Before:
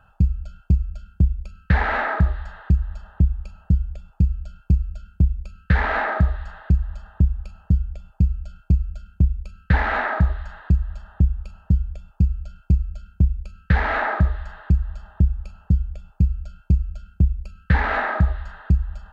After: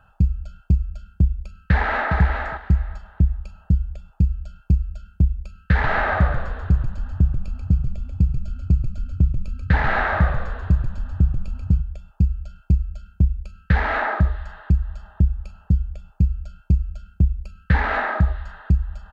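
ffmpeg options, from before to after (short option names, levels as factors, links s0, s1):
-filter_complex "[0:a]asplit=2[s0][s1];[s1]afade=t=in:st=1.57:d=0.01,afade=t=out:st=2.16:d=0.01,aecho=0:1:410|820|1230:0.530884|0.0796327|0.0119449[s2];[s0][s2]amix=inputs=2:normalize=0,asplit=3[s3][s4][s5];[s3]afade=t=out:st=5.81:d=0.02[s6];[s4]asplit=7[s7][s8][s9][s10][s11][s12][s13];[s8]adelay=137,afreqshift=-52,volume=0.562[s14];[s9]adelay=274,afreqshift=-104,volume=0.288[s15];[s10]adelay=411,afreqshift=-156,volume=0.146[s16];[s11]adelay=548,afreqshift=-208,volume=0.075[s17];[s12]adelay=685,afreqshift=-260,volume=0.038[s18];[s13]adelay=822,afreqshift=-312,volume=0.0195[s19];[s7][s14][s15][s16][s17][s18][s19]amix=inputs=7:normalize=0,afade=t=in:st=5.81:d=0.02,afade=t=out:st=11.8:d=0.02[s20];[s5]afade=t=in:st=11.8:d=0.02[s21];[s6][s20][s21]amix=inputs=3:normalize=0"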